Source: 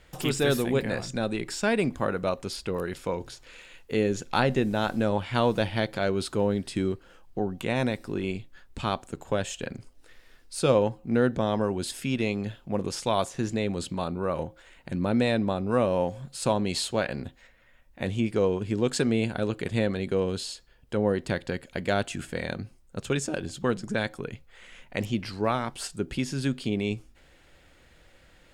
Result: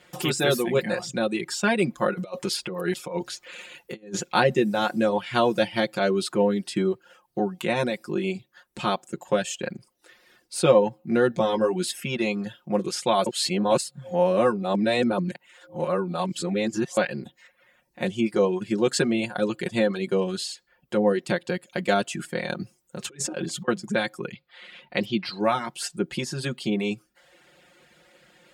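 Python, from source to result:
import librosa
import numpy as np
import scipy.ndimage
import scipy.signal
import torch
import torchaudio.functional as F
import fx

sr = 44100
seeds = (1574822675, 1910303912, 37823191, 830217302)

y = fx.over_compress(x, sr, threshold_db=-32.0, ratio=-0.5, at=(2.13, 4.35))
y = fx.doubler(y, sr, ms=17.0, db=-7.5, at=(11.28, 11.92))
y = fx.over_compress(y, sr, threshold_db=-34.0, ratio=-0.5, at=(22.6, 23.68))
y = fx.high_shelf_res(y, sr, hz=5300.0, db=-7.5, q=3.0, at=(24.32, 25.4))
y = fx.edit(y, sr, fx.reverse_span(start_s=13.26, length_s=3.71), tone=tone)
y = scipy.signal.sosfilt(scipy.signal.butter(2, 160.0, 'highpass', fs=sr, output='sos'), y)
y = fx.dereverb_blind(y, sr, rt60_s=0.57)
y = y + 0.82 * np.pad(y, (int(5.6 * sr / 1000.0), 0))[:len(y)]
y = y * librosa.db_to_amplitude(2.0)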